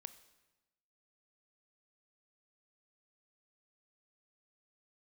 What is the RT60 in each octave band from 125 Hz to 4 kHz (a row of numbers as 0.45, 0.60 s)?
1.2, 1.2, 1.1, 1.1, 1.0, 1.0 s